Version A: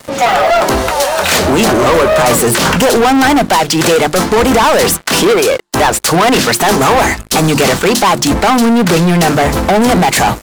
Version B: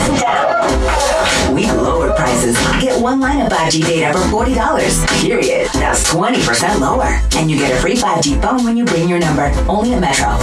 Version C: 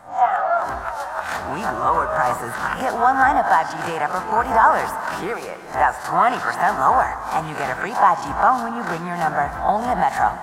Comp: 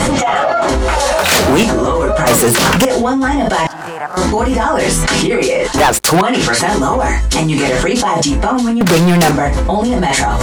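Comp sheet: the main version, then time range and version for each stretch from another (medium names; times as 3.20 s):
B
1.19–1.63 s: from A
2.27–2.85 s: from A
3.67–4.17 s: from C
5.78–6.21 s: from A
8.81–9.31 s: from A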